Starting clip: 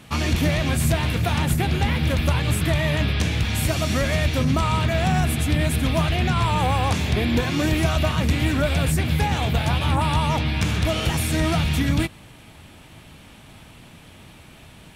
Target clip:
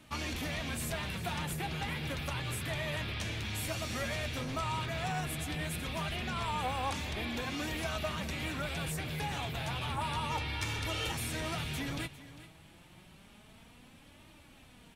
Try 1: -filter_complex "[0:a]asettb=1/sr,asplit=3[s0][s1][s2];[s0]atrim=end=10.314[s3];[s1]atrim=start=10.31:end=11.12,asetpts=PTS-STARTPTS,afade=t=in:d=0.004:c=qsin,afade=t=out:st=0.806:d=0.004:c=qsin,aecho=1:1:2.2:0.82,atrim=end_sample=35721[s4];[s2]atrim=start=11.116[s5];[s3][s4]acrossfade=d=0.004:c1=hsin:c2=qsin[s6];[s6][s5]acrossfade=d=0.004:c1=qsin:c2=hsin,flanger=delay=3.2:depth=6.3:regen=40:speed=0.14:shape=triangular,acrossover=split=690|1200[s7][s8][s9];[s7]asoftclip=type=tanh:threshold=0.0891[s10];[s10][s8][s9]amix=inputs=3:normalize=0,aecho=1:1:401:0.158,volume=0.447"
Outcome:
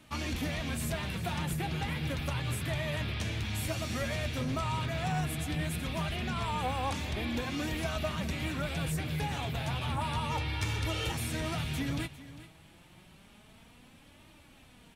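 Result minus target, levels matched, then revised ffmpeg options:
saturation: distortion -8 dB
-filter_complex "[0:a]asettb=1/sr,asplit=3[s0][s1][s2];[s0]atrim=end=10.314[s3];[s1]atrim=start=10.31:end=11.12,asetpts=PTS-STARTPTS,afade=t=in:d=0.004:c=qsin,afade=t=out:st=0.806:d=0.004:c=qsin,aecho=1:1:2.2:0.82,atrim=end_sample=35721[s4];[s2]atrim=start=11.116[s5];[s3][s4]acrossfade=d=0.004:c1=hsin:c2=qsin[s6];[s6][s5]acrossfade=d=0.004:c1=qsin:c2=hsin,flanger=delay=3.2:depth=6.3:regen=40:speed=0.14:shape=triangular,acrossover=split=690|1200[s7][s8][s9];[s7]asoftclip=type=tanh:threshold=0.0335[s10];[s10][s8][s9]amix=inputs=3:normalize=0,aecho=1:1:401:0.158,volume=0.447"

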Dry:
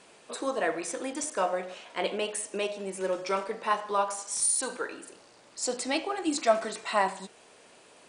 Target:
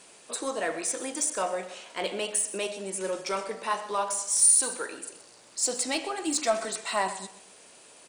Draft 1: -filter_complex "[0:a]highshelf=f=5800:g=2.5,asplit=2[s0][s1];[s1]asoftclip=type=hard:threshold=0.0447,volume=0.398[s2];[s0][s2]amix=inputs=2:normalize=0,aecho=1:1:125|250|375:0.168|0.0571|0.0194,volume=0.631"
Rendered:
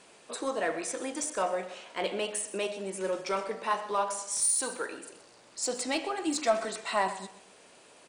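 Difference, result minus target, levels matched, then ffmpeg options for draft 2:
8 kHz band -3.0 dB
-filter_complex "[0:a]highshelf=f=5800:g=14,asplit=2[s0][s1];[s1]asoftclip=type=hard:threshold=0.0447,volume=0.398[s2];[s0][s2]amix=inputs=2:normalize=0,aecho=1:1:125|250|375:0.168|0.0571|0.0194,volume=0.631"

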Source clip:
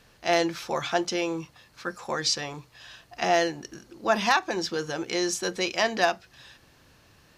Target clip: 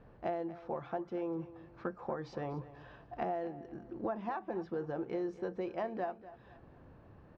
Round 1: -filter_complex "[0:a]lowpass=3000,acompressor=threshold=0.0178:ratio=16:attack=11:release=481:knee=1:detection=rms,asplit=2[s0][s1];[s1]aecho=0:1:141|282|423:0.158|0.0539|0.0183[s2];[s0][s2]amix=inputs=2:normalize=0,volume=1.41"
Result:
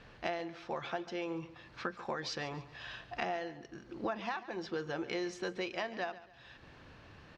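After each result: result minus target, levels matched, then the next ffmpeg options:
4 kHz band +17.5 dB; echo 103 ms early
-filter_complex "[0:a]lowpass=850,acompressor=threshold=0.0178:ratio=16:attack=11:release=481:knee=1:detection=rms,asplit=2[s0][s1];[s1]aecho=0:1:141|282|423:0.158|0.0539|0.0183[s2];[s0][s2]amix=inputs=2:normalize=0,volume=1.41"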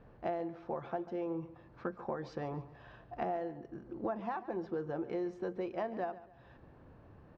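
echo 103 ms early
-filter_complex "[0:a]lowpass=850,acompressor=threshold=0.0178:ratio=16:attack=11:release=481:knee=1:detection=rms,asplit=2[s0][s1];[s1]aecho=0:1:244|488|732:0.158|0.0539|0.0183[s2];[s0][s2]amix=inputs=2:normalize=0,volume=1.41"

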